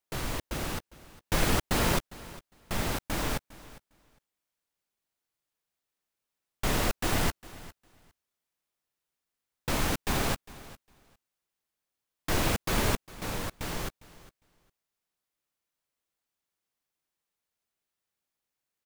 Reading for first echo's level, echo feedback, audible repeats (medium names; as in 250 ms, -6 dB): -19.0 dB, 16%, 2